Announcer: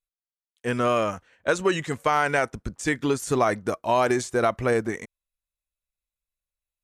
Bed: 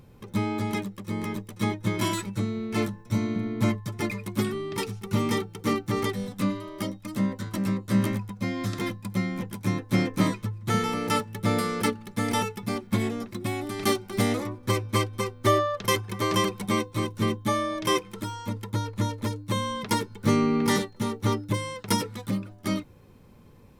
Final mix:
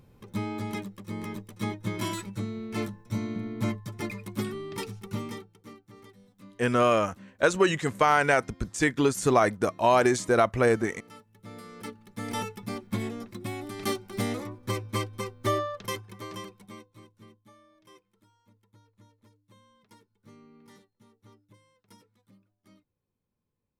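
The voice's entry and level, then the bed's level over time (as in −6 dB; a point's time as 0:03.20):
5.95 s, +0.5 dB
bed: 0:05.04 −5 dB
0:05.79 −24.5 dB
0:11.26 −24.5 dB
0:12.42 −5.5 dB
0:15.62 −5.5 dB
0:17.54 −31.5 dB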